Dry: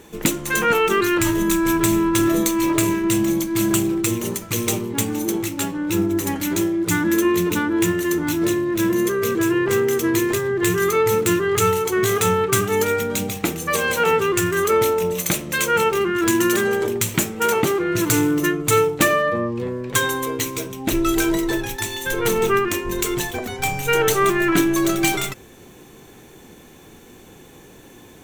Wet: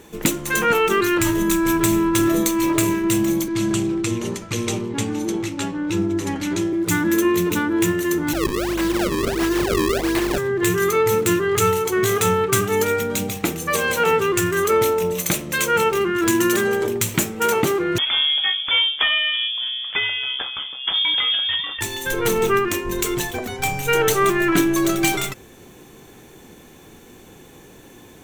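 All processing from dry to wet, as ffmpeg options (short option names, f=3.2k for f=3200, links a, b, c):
-filter_complex "[0:a]asettb=1/sr,asplit=3[a][b][c];[a]atrim=end=3.484[d];[b]atrim=start=3.48:end=6.73,asetpts=PTS-STARTPTS,afade=t=in:d=0.004:c=qsin,afade=t=out:st=3.246:d=0.004:c=qsin,lowpass=6.2k,acrossover=split=290|3000[e][f][g];[f]acompressor=threshold=-23dB:ratio=6:attack=3.2:release=140:knee=2.83:detection=peak[h];[e][h][g]amix=inputs=3:normalize=0[i];[c]atrim=start=6.726[j];[d][i]acrossfade=d=0.004:c1=hsin:c2=qsin[k];[k][j]acrossfade=d=0.004:c1=qsin:c2=hsin,asettb=1/sr,asplit=3[l][m][n];[l]atrim=end=8.334[o];[m]atrim=start=8.33:end=10.38,asetpts=PTS-STARTPTS,afade=t=in:d=0.004:c=qsin,afade=t=out:st=2.046:d=0.004:c=qsin,highpass=270,acrusher=samples=35:mix=1:aa=0.000001:lfo=1:lforange=56:lforate=1.5,aeval=exprs='val(0)+0.0251*(sin(2*PI*50*n/s)+sin(2*PI*2*50*n/s)/2+sin(2*PI*3*50*n/s)/3+sin(2*PI*4*50*n/s)/4+sin(2*PI*5*50*n/s)/5)':c=same[p];[n]atrim=start=10.376[q];[o][p]acrossfade=d=0.004:c1=hsin:c2=qsin[r];[r][q]acrossfade=d=0.004:c1=qsin:c2=hsin,asettb=1/sr,asplit=3[s][t][u];[s]atrim=end=17.984[v];[t]atrim=start=17.98:end=21.81,asetpts=PTS-STARTPTS,afade=t=in:d=0.004:c=qsin,afade=t=out:st=3.826:d=0.004:c=qsin,aeval=exprs='(tanh(2.82*val(0)+0.2)-tanh(0.2))/2.82':c=same,lowpass=f=3.1k:t=q:w=0.5098,lowpass=f=3.1k:t=q:w=0.6013,lowpass=f=3.1k:t=q:w=0.9,lowpass=f=3.1k:t=q:w=2.563,afreqshift=-3600[w];[u]atrim=start=21.806[x];[v][w]acrossfade=d=0.004:c1=hsin:c2=qsin[y];[y][x]acrossfade=d=0.004:c1=qsin:c2=hsin"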